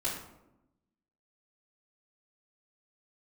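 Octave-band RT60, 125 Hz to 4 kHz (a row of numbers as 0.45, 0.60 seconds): 1.2, 1.3, 1.0, 0.85, 0.60, 0.45 seconds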